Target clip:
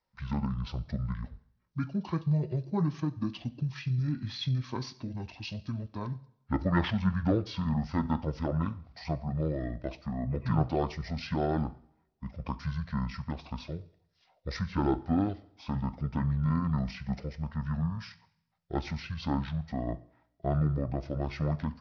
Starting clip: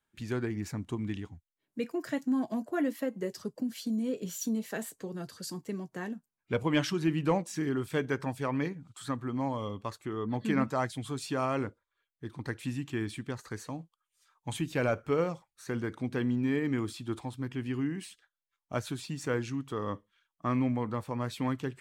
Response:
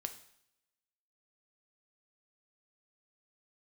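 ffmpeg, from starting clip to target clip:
-filter_complex "[0:a]aresample=22050,aresample=44100,asplit=2[a][b];[1:a]atrim=start_sample=2205[c];[b][c]afir=irnorm=-1:irlink=0,volume=2dB[d];[a][d]amix=inputs=2:normalize=0,asetrate=25476,aresample=44100,atempo=1.73107,volume=-4.5dB"

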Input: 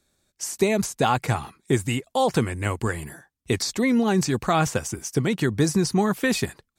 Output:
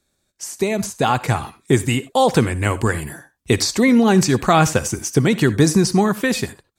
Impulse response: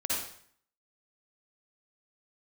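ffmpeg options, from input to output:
-filter_complex "[0:a]dynaudnorm=f=250:g=9:m=11.5dB,asplit=2[a][b];[1:a]atrim=start_sample=2205,afade=t=out:st=0.15:d=0.01,atrim=end_sample=7056[c];[b][c]afir=irnorm=-1:irlink=0,volume=-20dB[d];[a][d]amix=inputs=2:normalize=0,volume=-1dB"

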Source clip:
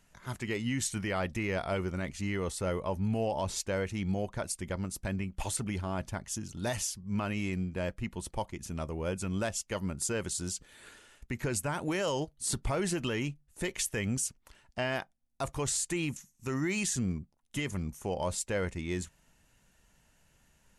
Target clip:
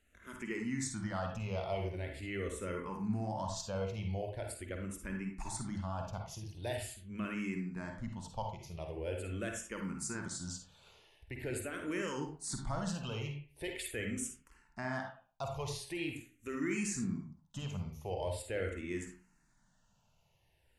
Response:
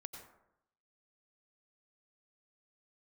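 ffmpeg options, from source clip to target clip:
-filter_complex "[0:a]highshelf=f=9.6k:g=-6.5[a];[1:a]atrim=start_sample=2205,asetrate=83790,aresample=44100[b];[a][b]afir=irnorm=-1:irlink=0,asplit=2[c][d];[d]afreqshift=-0.43[e];[c][e]amix=inputs=2:normalize=1,volume=7dB"

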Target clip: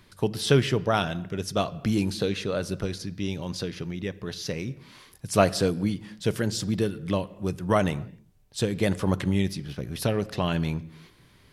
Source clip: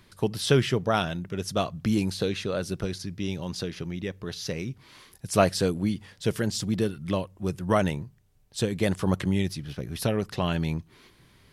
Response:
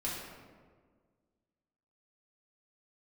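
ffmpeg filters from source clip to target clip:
-filter_complex "[0:a]asplit=2[a][b];[1:a]atrim=start_sample=2205,afade=t=out:st=0.32:d=0.01,atrim=end_sample=14553,lowpass=6.7k[c];[b][c]afir=irnorm=-1:irlink=0,volume=-18.5dB[d];[a][d]amix=inputs=2:normalize=0"

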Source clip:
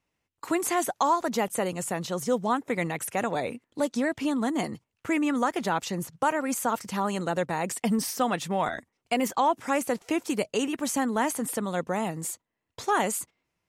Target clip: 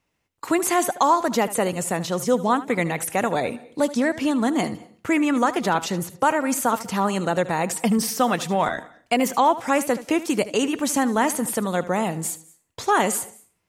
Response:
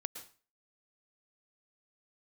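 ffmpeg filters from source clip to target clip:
-filter_complex "[0:a]asplit=2[a][b];[1:a]atrim=start_sample=2205,adelay=76[c];[b][c]afir=irnorm=-1:irlink=0,volume=-13.5dB[d];[a][d]amix=inputs=2:normalize=0,volume=5.5dB"

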